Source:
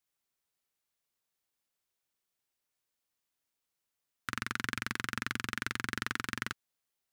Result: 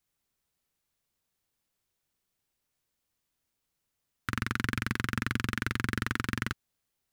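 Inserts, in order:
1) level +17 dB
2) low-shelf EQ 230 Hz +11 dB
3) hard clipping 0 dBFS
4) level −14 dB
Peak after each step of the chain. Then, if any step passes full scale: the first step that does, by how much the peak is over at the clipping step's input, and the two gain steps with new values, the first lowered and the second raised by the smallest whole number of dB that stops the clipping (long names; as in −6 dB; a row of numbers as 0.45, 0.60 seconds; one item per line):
+4.5, +5.0, 0.0, −14.0 dBFS
step 1, 5.0 dB
step 1 +12 dB, step 4 −9 dB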